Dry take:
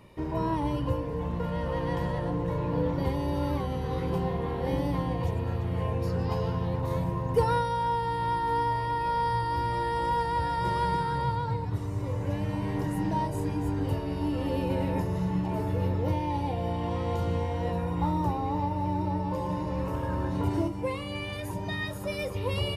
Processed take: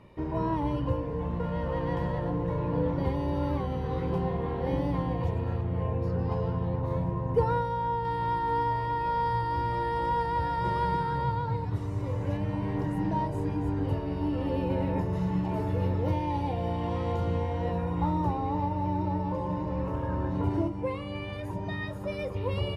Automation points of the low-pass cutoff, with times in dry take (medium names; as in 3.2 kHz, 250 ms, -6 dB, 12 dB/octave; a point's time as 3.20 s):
low-pass 6 dB/octave
2.4 kHz
from 5.61 s 1.2 kHz
from 8.05 s 2.6 kHz
from 11.54 s 4.8 kHz
from 12.37 s 2.2 kHz
from 15.13 s 4.8 kHz
from 17.12 s 3 kHz
from 19.32 s 1.7 kHz